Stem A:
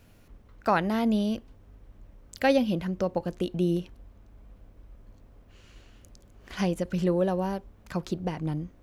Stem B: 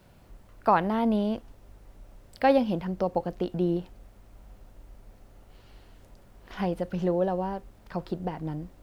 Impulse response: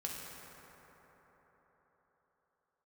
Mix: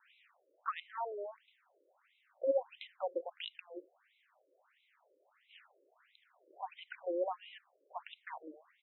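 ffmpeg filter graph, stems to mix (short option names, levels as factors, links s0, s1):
-filter_complex "[0:a]highpass=f=1100:w=0.5412,highpass=f=1100:w=1.3066,acompressor=threshold=0.00631:ratio=6,volume=1[s0];[1:a]lowpass=4400,adelay=0.4,volume=0.596[s1];[s0][s1]amix=inputs=2:normalize=0,tiltshelf=f=1200:g=-5.5,afftfilt=real='re*between(b*sr/1024,420*pow(2900/420,0.5+0.5*sin(2*PI*1.5*pts/sr))/1.41,420*pow(2900/420,0.5+0.5*sin(2*PI*1.5*pts/sr))*1.41)':imag='im*between(b*sr/1024,420*pow(2900/420,0.5+0.5*sin(2*PI*1.5*pts/sr))/1.41,420*pow(2900/420,0.5+0.5*sin(2*PI*1.5*pts/sr))*1.41)':win_size=1024:overlap=0.75"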